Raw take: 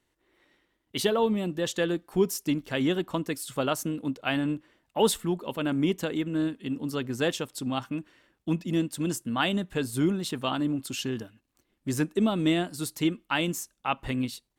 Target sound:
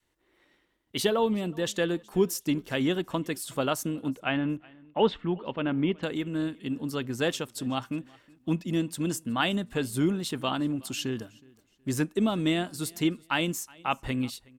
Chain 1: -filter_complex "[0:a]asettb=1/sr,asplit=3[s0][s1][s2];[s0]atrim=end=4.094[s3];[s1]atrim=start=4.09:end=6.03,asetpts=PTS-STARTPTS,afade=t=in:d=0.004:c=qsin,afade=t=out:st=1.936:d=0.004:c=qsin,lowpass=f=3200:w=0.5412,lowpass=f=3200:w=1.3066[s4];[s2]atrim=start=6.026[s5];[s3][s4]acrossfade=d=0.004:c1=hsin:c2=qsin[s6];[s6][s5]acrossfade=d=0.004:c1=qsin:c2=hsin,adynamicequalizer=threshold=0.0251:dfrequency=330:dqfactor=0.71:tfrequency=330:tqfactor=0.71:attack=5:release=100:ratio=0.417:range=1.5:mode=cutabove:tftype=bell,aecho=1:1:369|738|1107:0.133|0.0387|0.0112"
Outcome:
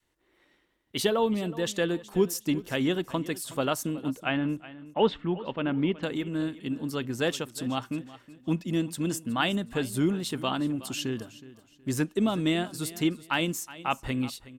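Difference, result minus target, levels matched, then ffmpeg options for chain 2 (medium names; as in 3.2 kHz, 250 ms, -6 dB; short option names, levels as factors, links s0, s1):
echo-to-direct +8 dB
-filter_complex "[0:a]asettb=1/sr,asplit=3[s0][s1][s2];[s0]atrim=end=4.094[s3];[s1]atrim=start=4.09:end=6.03,asetpts=PTS-STARTPTS,afade=t=in:d=0.004:c=qsin,afade=t=out:st=1.936:d=0.004:c=qsin,lowpass=f=3200:w=0.5412,lowpass=f=3200:w=1.3066[s4];[s2]atrim=start=6.026[s5];[s3][s4]acrossfade=d=0.004:c1=hsin:c2=qsin[s6];[s6][s5]acrossfade=d=0.004:c1=qsin:c2=hsin,adynamicequalizer=threshold=0.0251:dfrequency=330:dqfactor=0.71:tfrequency=330:tqfactor=0.71:attack=5:release=100:ratio=0.417:range=1.5:mode=cutabove:tftype=bell,aecho=1:1:369|738:0.0531|0.0154"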